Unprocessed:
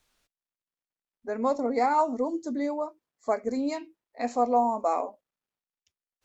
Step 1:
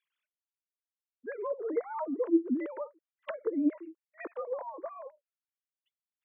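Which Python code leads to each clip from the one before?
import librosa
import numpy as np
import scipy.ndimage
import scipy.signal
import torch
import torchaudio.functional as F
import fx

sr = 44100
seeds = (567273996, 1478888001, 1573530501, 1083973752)

y = fx.sine_speech(x, sr)
y = fx.env_lowpass_down(y, sr, base_hz=920.0, full_db=-25.0)
y = fx.fixed_phaser(y, sr, hz=310.0, stages=4)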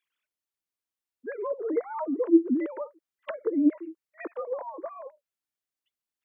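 y = fx.peak_eq(x, sr, hz=320.0, db=4.0, octaves=0.58)
y = F.gain(torch.from_numpy(y), 2.5).numpy()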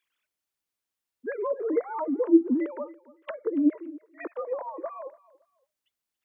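y = fx.rider(x, sr, range_db=4, speed_s=2.0)
y = fx.echo_feedback(y, sr, ms=282, feedback_pct=24, wet_db=-21)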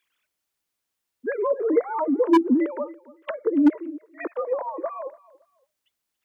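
y = 10.0 ** (-14.0 / 20.0) * (np.abs((x / 10.0 ** (-14.0 / 20.0) + 3.0) % 4.0 - 2.0) - 1.0)
y = F.gain(torch.from_numpy(y), 5.5).numpy()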